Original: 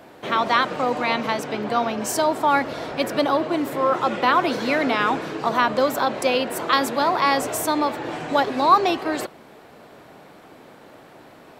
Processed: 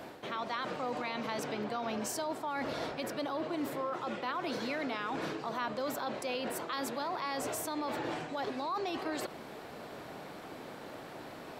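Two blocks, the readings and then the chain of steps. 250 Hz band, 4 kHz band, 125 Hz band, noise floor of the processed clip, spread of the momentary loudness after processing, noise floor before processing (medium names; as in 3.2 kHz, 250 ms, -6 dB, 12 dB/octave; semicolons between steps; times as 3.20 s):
-13.0 dB, -14.0 dB, -11.0 dB, -47 dBFS, 11 LU, -47 dBFS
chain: peaking EQ 4.6 kHz +2.5 dB; reverse; compression 6:1, threshold -31 dBFS, peak gain reduction 19.5 dB; reverse; peak limiter -27.5 dBFS, peak gain reduction 7.5 dB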